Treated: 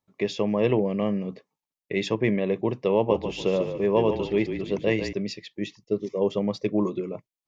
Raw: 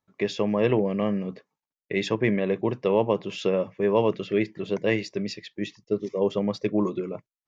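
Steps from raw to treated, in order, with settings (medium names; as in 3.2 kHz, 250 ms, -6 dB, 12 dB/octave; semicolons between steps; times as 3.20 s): peaking EQ 1.5 kHz -8.5 dB 0.43 oct; 2.94–5.13 s: frequency-shifting echo 146 ms, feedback 36%, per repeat -33 Hz, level -8 dB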